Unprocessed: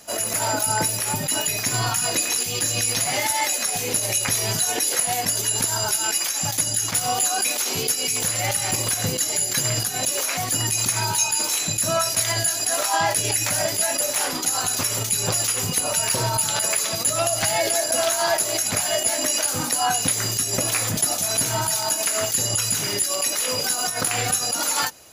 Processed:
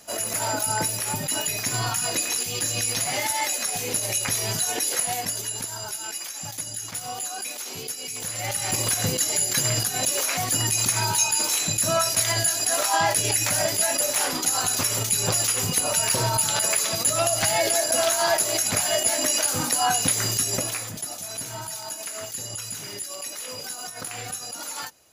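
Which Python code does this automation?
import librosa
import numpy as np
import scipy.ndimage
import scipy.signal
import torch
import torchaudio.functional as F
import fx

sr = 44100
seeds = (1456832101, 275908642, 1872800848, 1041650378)

y = fx.gain(x, sr, db=fx.line((5.06, -3.0), (5.72, -10.0), (8.11, -10.0), (8.84, -0.5), (20.48, -0.5), (20.91, -11.0)))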